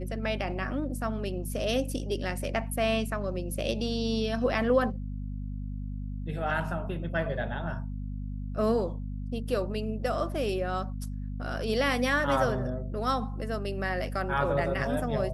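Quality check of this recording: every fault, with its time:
mains hum 50 Hz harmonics 5 −35 dBFS

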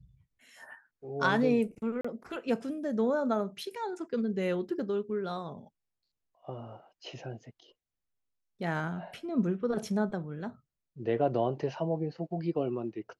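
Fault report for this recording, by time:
0:02.01–0:02.04: drop-out 35 ms

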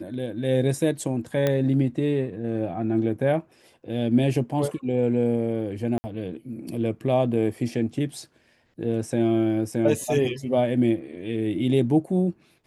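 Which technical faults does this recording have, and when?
0:01.47: click −10 dBFS
0:05.98–0:06.04: drop-out 60 ms

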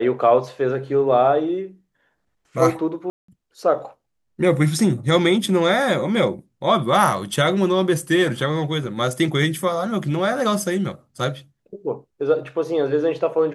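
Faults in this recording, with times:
0:03.10–0:03.28: drop-out 184 ms

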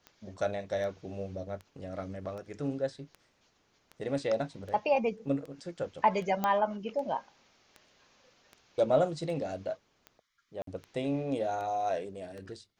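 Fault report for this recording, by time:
scratch tick 78 rpm −31 dBFS
0:06.44: click −16 dBFS
0:10.62–0:10.67: drop-out 53 ms

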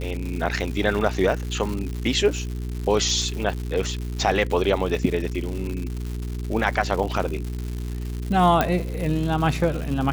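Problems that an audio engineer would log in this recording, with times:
surface crackle 230 per second −29 dBFS
mains hum 60 Hz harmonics 7 −29 dBFS
0:08.61: click −6 dBFS

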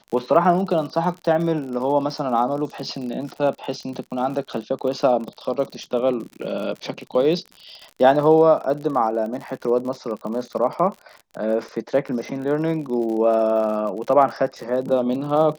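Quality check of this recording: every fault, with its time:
surface crackle 54 per second −30 dBFS

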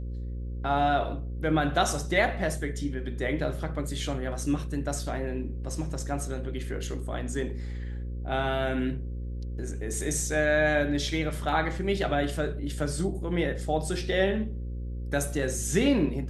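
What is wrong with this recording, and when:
mains buzz 60 Hz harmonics 9 −34 dBFS

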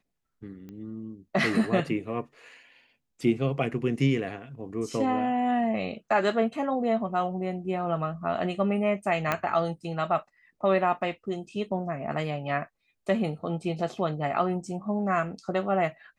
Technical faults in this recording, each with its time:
0:00.69: click −31 dBFS
0:09.32: click −12 dBFS

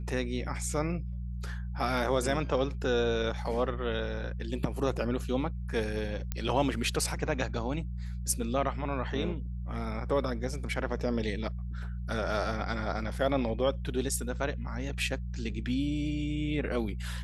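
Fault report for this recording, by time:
mains hum 60 Hz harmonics 3 −36 dBFS
0:06.32: click −17 dBFS

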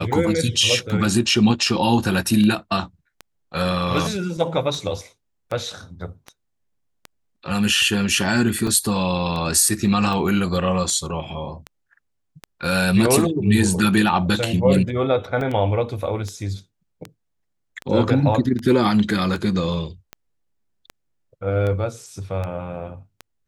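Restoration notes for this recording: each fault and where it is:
scratch tick 78 rpm
0:08.67: drop-out 3.6 ms
0:15.41: drop-out 2.2 ms

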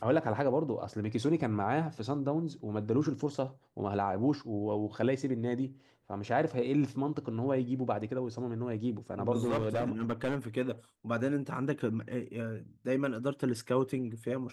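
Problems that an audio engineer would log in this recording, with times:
0:09.43–0:10.37: clipping −26 dBFS

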